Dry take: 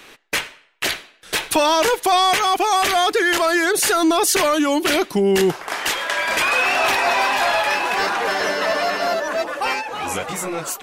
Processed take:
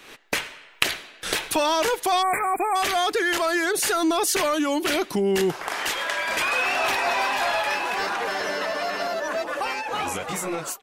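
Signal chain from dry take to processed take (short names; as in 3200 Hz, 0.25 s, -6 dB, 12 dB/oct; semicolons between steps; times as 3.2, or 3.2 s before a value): ending faded out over 3.12 s; recorder AGC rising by 51 dB/s; in parallel at -5.5 dB: overloaded stage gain 11 dB; on the sum: spectral delete 2.22–2.76, 2500–7200 Hz; gain -9 dB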